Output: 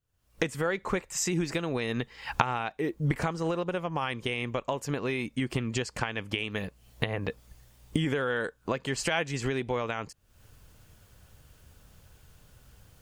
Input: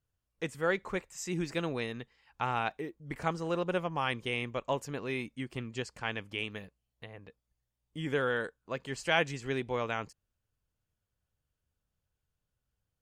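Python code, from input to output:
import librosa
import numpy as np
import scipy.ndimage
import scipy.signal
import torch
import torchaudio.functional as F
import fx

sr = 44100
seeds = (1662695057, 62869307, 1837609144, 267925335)

y = fx.recorder_agc(x, sr, target_db=-19.0, rise_db_per_s=64.0, max_gain_db=30)
y = y * librosa.db_to_amplitude(-1.5)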